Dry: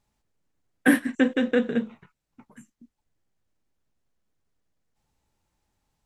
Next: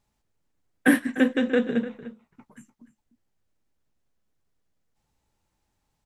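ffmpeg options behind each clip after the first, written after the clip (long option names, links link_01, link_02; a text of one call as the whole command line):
ffmpeg -i in.wav -filter_complex "[0:a]asplit=2[link_01][link_02];[link_02]adelay=297.4,volume=-14dB,highshelf=frequency=4000:gain=-6.69[link_03];[link_01][link_03]amix=inputs=2:normalize=0" out.wav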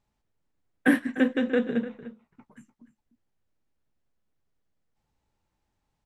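ffmpeg -i in.wav -af "highshelf=frequency=6000:gain=-9.5,volume=-2dB" out.wav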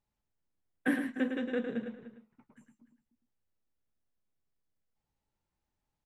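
ffmpeg -i in.wav -af "aecho=1:1:107:0.447,volume=-9dB" out.wav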